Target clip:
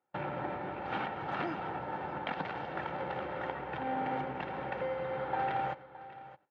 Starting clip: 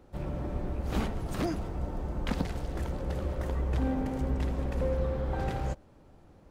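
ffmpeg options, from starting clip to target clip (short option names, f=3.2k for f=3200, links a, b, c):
-filter_complex "[0:a]tiltshelf=f=1.3k:g=-9.5,agate=range=-32dB:threshold=-49dB:ratio=16:detection=peak,aecho=1:1:2.2:0.53,acompressor=threshold=-41dB:ratio=5,asplit=2[a][b];[b]acrusher=samples=17:mix=1:aa=0.000001,volume=-4dB[c];[a][c]amix=inputs=2:normalize=0,highpass=f=140:w=0.5412,highpass=f=140:w=1.3066,equalizer=f=430:t=q:w=4:g=-6,equalizer=f=770:t=q:w=4:g=9,equalizer=f=1.5k:t=q:w=4:g=5,lowpass=f=2.6k:w=0.5412,lowpass=f=2.6k:w=1.3066,aecho=1:1:617:0.158,volume=7dB"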